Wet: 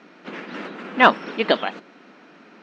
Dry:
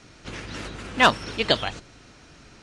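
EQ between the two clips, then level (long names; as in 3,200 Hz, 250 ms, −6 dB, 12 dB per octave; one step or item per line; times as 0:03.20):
linear-phase brick-wall high-pass 170 Hz
low-pass filter 2,300 Hz 12 dB per octave
+4.5 dB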